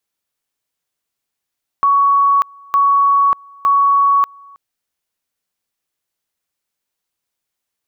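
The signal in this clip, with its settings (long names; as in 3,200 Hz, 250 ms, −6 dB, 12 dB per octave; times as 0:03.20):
tone at two levels in turn 1,120 Hz −9 dBFS, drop 28.5 dB, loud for 0.59 s, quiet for 0.32 s, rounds 3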